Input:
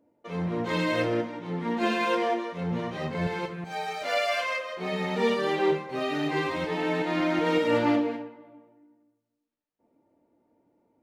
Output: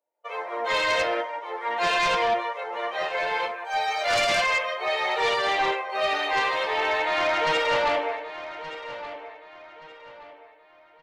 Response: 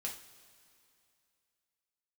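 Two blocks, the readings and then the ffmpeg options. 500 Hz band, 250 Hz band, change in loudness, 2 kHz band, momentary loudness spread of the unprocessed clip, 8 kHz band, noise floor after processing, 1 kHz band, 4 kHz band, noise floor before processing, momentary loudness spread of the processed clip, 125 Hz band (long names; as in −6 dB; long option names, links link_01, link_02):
+1.0 dB, −14.0 dB, +3.0 dB, +7.0 dB, 9 LU, +8.5 dB, −55 dBFS, +6.5 dB, +7.5 dB, −80 dBFS, 14 LU, −14.5 dB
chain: -filter_complex "[0:a]highpass=frequency=570:width=0.5412,highpass=frequency=570:width=1.3066,afftdn=noise_reduction=13:noise_floor=-45,highshelf=frequency=5500:gain=4.5,dynaudnorm=framelen=120:gausssize=3:maxgain=8dB,flanger=delay=5.2:depth=6.6:regen=77:speed=0.38:shape=sinusoidal,aeval=exprs='0.237*sin(PI/2*2.24*val(0)/0.237)':channel_layout=same,asplit=2[link_01][link_02];[link_02]adelay=1174,lowpass=frequency=4700:poles=1,volume=-13dB,asplit=2[link_03][link_04];[link_04]adelay=1174,lowpass=frequency=4700:poles=1,volume=0.36,asplit=2[link_05][link_06];[link_06]adelay=1174,lowpass=frequency=4700:poles=1,volume=0.36,asplit=2[link_07][link_08];[link_08]adelay=1174,lowpass=frequency=4700:poles=1,volume=0.36[link_09];[link_01][link_03][link_05][link_07][link_09]amix=inputs=5:normalize=0,volume=-6dB"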